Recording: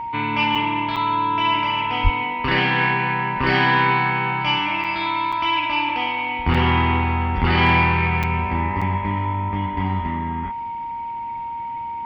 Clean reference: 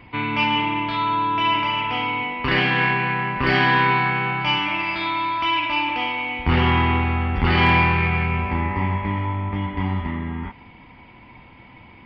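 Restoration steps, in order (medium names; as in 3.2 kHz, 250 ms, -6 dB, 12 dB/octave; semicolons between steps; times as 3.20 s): band-stop 930 Hz, Q 30; de-plosive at 2.03 s; interpolate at 0.55/0.96/4.84/5.32/6.54/8.23/8.81 s, 5.5 ms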